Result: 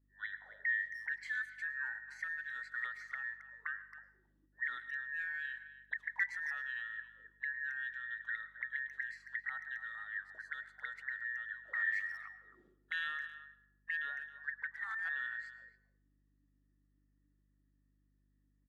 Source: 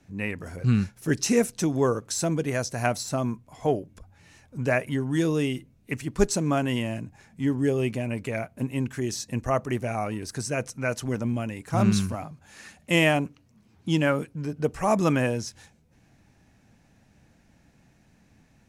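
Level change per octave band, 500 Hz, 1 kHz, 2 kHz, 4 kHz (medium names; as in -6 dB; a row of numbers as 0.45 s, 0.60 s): under -40 dB, -20.0 dB, -2.0 dB, -19.5 dB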